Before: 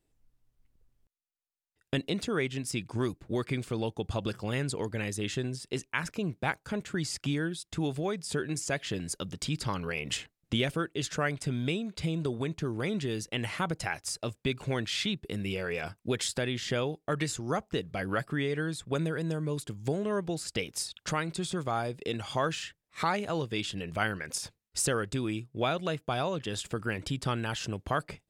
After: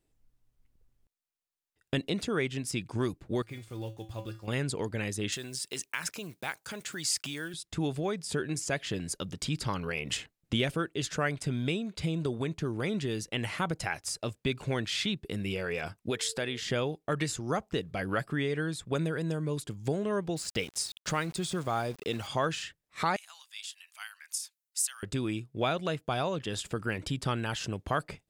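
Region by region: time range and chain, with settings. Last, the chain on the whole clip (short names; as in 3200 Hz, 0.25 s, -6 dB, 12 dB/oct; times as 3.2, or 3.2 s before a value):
3.42–4.48 block floating point 5-bit + resonator 110 Hz, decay 0.3 s, harmonics odd, mix 80%
5.32–7.54 block floating point 7-bit + compressor 2.5:1, threshold -32 dBFS + tilt +3 dB/oct
16.09–16.59 low shelf 230 Hz -9 dB + whine 450 Hz -48 dBFS
20.36–22.27 LPF 10000 Hz + high shelf 6700 Hz +4.5 dB + sample gate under -45 dBFS
23.16–25.03 steep high-pass 820 Hz + differentiator
whole clip: dry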